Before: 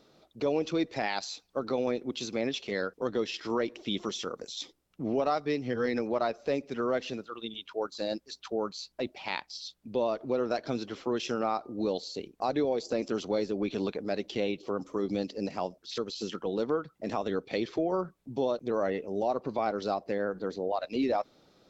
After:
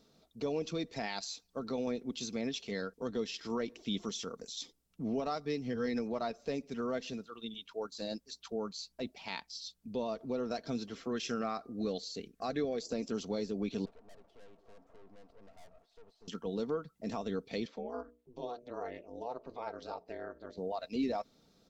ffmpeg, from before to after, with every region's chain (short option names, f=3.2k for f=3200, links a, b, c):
-filter_complex "[0:a]asettb=1/sr,asplit=3[a][b][c];[a]atrim=end=10.954[d];[b]atrim=start=10.95:end=12.85,asetpts=PTS-STARTPTS,afade=t=in:d=0.004:c=qsin,afade=t=out:st=1.896:d=0.004:c=qsin,asuperstop=centerf=910:order=4:qfactor=6.7,equalizer=f=1.7k:t=o:w=0.87:g=7[e];[c]atrim=start=12.846[f];[d][e]acrossfade=d=0.004:c1=hsin:c2=qsin[g];[g][f]acrossfade=d=0.004:c1=qsin:c2=hsin,asettb=1/sr,asplit=3[h][i][j];[h]atrim=end=13.854[k];[i]atrim=start=13.85:end=16.28,asetpts=PTS-STARTPTS,afade=t=in:d=0.004:c=qsin,afade=t=out:st=2.426:d=0.004:c=qsin,aeval=exprs='val(0)+0.5*0.0112*sgn(val(0))':c=same,bandpass=f=680:t=q:w=4.5,aeval=exprs='(tanh(282*val(0)+0.75)-tanh(0.75))/282':c=same[l];[j]atrim=start=16.276[m];[k][l]acrossfade=d=0.004:c1=hsin:c2=qsin[n];[n][m]acrossfade=d=0.004:c1=qsin:c2=hsin,asettb=1/sr,asplit=3[o][p][q];[o]atrim=end=17.674[r];[p]atrim=start=17.67:end=20.58,asetpts=PTS-STARTPTS,afade=t=in:d=0.004:c=qsin,afade=t=out:st=2.906:d=0.004:c=qsin,bandreject=f=60:t=h:w=6,bandreject=f=120:t=h:w=6,bandreject=f=180:t=h:w=6,bandreject=f=240:t=h:w=6,bandreject=f=300:t=h:w=6,bandreject=f=360:t=h:w=6,bandreject=f=420:t=h:w=6,bandreject=f=480:t=h:w=6,bandreject=f=540:t=h:w=6,aeval=exprs='val(0)*sin(2*PI*120*n/s)':c=same,bass=f=250:g=-15,treble=f=4k:g=-9[s];[q]atrim=start=20.576[t];[r][s]acrossfade=d=0.004:c1=hsin:c2=qsin[u];[u][t]acrossfade=d=0.004:c1=qsin:c2=hsin,bass=f=250:g=8,treble=f=4k:g=8,aecho=1:1:4.4:0.36,volume=-8.5dB"